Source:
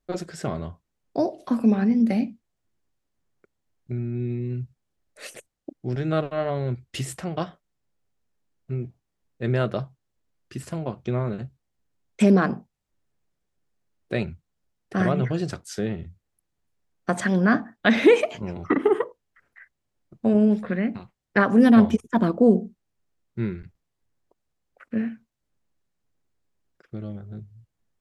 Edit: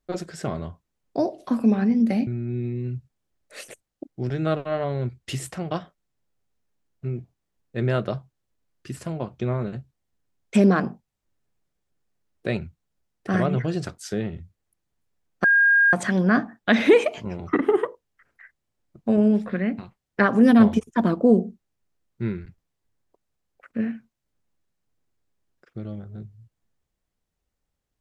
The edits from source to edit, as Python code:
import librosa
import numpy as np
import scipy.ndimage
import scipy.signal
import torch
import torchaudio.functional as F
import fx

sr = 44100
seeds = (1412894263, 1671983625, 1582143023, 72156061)

y = fx.edit(x, sr, fx.cut(start_s=2.27, length_s=1.66),
    fx.insert_tone(at_s=17.1, length_s=0.49, hz=1620.0, db=-13.5), tone=tone)